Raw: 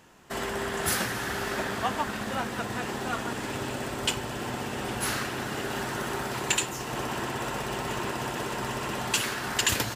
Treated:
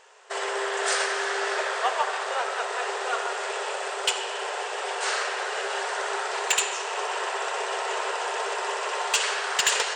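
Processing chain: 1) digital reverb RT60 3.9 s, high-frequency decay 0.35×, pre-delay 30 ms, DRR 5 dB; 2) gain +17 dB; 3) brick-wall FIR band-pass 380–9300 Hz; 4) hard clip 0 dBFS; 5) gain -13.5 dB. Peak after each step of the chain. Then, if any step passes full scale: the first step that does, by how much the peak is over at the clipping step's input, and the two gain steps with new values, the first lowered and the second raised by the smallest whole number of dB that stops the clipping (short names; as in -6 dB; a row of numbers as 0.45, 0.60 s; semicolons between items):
-10.5, +6.5, +7.0, 0.0, -13.5 dBFS; step 2, 7.0 dB; step 2 +10 dB, step 5 -6.5 dB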